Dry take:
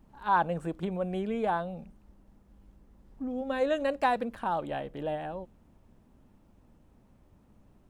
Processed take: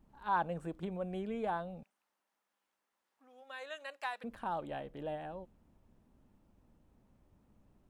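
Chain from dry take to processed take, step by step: 1.83–4.24 s: high-pass 1.2 kHz 12 dB/octave; trim -7 dB

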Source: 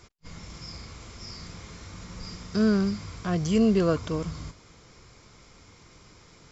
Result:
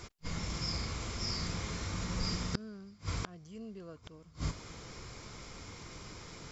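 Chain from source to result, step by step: inverted gate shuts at -24 dBFS, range -30 dB; trim +5 dB

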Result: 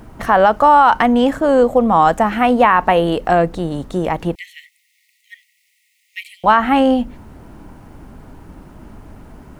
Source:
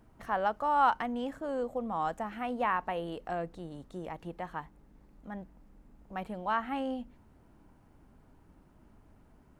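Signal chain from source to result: 4.35–6.44 s: Chebyshev high-pass 1.9 kHz, order 10; loudness maximiser +22.5 dB; trim -1 dB

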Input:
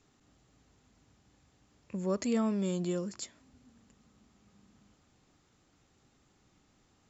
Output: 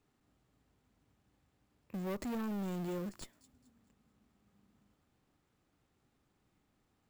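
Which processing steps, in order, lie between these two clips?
companding laws mixed up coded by A; treble shelf 4.6 kHz -11 dB; in parallel at -8 dB: Schmitt trigger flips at -41 dBFS; on the sum: careless resampling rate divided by 3×, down none, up hold; saturation -37 dBFS, distortion -8 dB; on a send: feedback echo behind a high-pass 216 ms, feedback 35%, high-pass 4.8 kHz, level -15 dB; on the sum: trim +1.5 dB

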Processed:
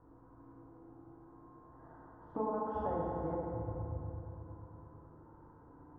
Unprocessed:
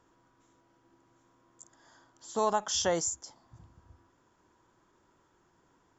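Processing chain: chunks repeated in reverse 223 ms, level -8 dB; low-pass 1.2 kHz 24 dB/octave; bass shelf 140 Hz +10 dB; compression 6:1, threshold -40 dBFS, peak gain reduction 16 dB; FDN reverb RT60 3.3 s, high-frequency decay 0.5×, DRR -5.5 dB; trim +1 dB

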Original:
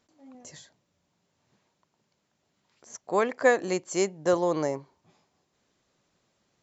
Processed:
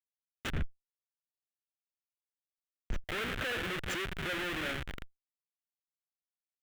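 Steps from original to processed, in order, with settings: reverberation RT60 1.4 s, pre-delay 4 ms, DRR 10.5 dB; compression 3:1, threshold -37 dBFS, peak gain reduction 15.5 dB; Schmitt trigger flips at -41 dBFS; 0.52–3.04 s: tilt EQ -3.5 dB/octave; power-law waveshaper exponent 0.7; high-order bell 2.2 kHz +12.5 dB; trim -2.5 dB

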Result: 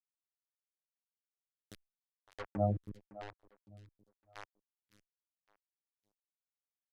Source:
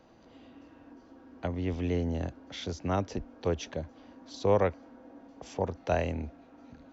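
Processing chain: Doppler pass-by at 2.60 s, 36 m/s, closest 3.3 m; hum notches 50/100/150 Hz; robot voice 103 Hz; spectral gate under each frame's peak -10 dB strong; peaking EQ 870 Hz +3 dB 1.3 oct; comb 1.6 ms, depth 44%; bit crusher 7-bit; low-pass that closes with the level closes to 670 Hz, closed at -36 dBFS; on a send: feedback delay 560 ms, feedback 36%, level -17 dB; on the sum: lamp-driven phase shifter 0.98 Hz; trim +4.5 dB

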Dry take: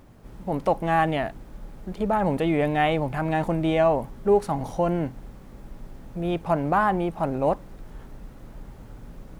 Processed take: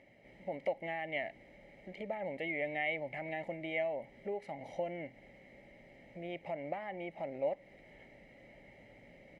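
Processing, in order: comb 1 ms, depth 68%; compression 4:1, threshold -28 dBFS, peak gain reduction 12 dB; two resonant band-passes 1.1 kHz, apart 2 oct; trim +6.5 dB

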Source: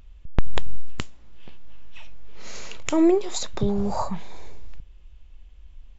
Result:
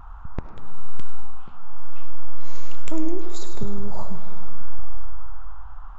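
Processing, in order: bass shelf 420 Hz +10.5 dB; compression, threshold -23 dBFS, peak gain reduction 22 dB; band noise 750–1400 Hz -47 dBFS; feedback comb 79 Hz, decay 0.68 s, harmonics all, mix 40%; on a send: feedback echo behind a high-pass 103 ms, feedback 51%, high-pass 5.3 kHz, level -6 dB; on the sum: algorithmic reverb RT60 1.9 s, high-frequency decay 0.45×, pre-delay 35 ms, DRR 9.5 dB; warped record 33 1/3 rpm, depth 100 cents

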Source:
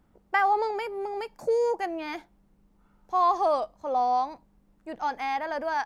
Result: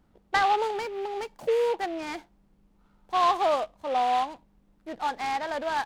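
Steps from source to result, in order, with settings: delay time shaken by noise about 2.1 kHz, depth 0.034 ms

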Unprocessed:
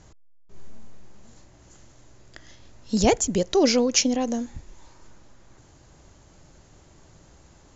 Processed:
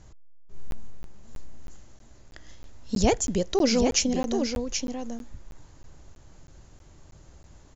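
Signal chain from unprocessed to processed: bass shelf 85 Hz +9 dB; on a send: delay 779 ms -6.5 dB; on the sum: crackling interface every 0.32 s, samples 512, zero, from 0.71 s; trim -3.5 dB

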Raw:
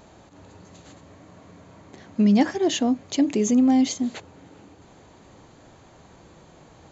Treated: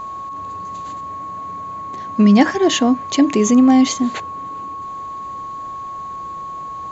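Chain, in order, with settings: dynamic bell 1.6 kHz, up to +5 dB, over -45 dBFS, Q 0.97; whistle 1.1 kHz -33 dBFS; trim +6.5 dB

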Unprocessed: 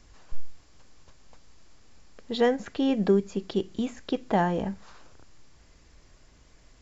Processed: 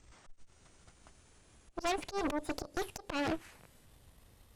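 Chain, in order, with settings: gliding tape speed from 117% -> 182%; slow attack 151 ms; Chebyshev shaper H 5 -21 dB, 8 -9 dB, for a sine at -16.5 dBFS; trim -8.5 dB

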